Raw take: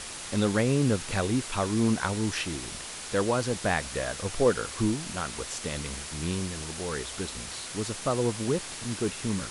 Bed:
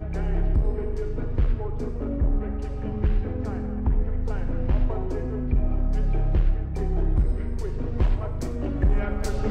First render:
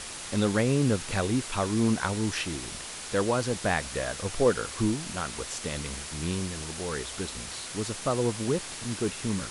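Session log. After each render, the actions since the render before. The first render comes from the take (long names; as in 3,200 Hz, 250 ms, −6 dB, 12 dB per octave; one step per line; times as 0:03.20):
no processing that can be heard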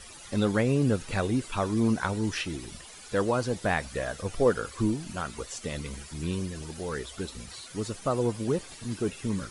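broadband denoise 13 dB, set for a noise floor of −39 dBFS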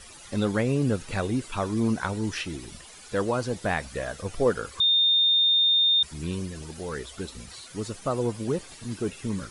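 0:04.80–0:06.03: beep over 3,640 Hz −17.5 dBFS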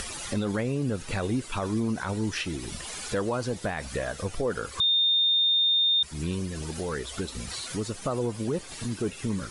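brickwall limiter −19.5 dBFS, peak gain reduction 8 dB
upward compression, threshold −26 dBFS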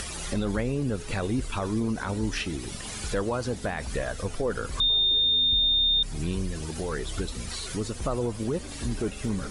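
mix in bed −14 dB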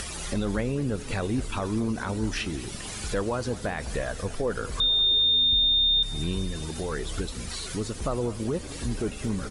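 repeating echo 208 ms, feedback 58%, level −18 dB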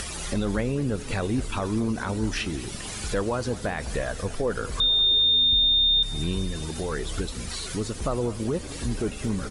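level +1.5 dB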